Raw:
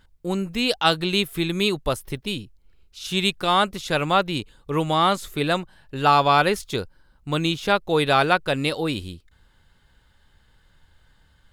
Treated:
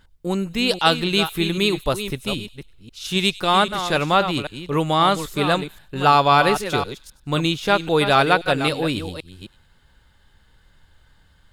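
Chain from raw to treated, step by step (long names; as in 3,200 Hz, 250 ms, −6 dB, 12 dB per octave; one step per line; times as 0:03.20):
delay that plays each chunk backwards 263 ms, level −9.5 dB
delay with a high-pass on its return 99 ms, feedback 39%, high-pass 3,000 Hz, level −17.5 dB
level +2 dB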